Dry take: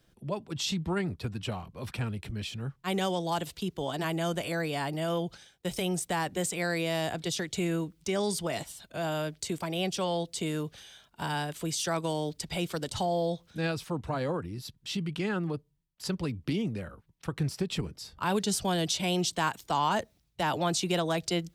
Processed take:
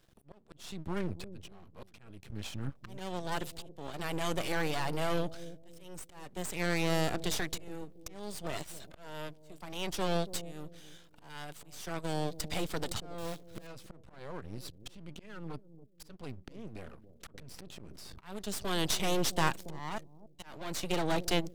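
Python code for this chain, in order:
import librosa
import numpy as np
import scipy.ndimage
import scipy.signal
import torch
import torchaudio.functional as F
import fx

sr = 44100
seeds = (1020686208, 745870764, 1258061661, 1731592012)

y = fx.block_float(x, sr, bits=3, at=(13.18, 13.69))
y = fx.tone_stack(y, sr, knobs='5-5-5', at=(19.98, 20.43))
y = fx.auto_swell(y, sr, attack_ms=734.0)
y = np.maximum(y, 0.0)
y = fx.echo_bbd(y, sr, ms=280, stages=1024, feedback_pct=33, wet_db=-13)
y = fx.env_flatten(y, sr, amount_pct=100, at=(17.34, 18.19))
y = y * 10.0 ** (3.0 / 20.0)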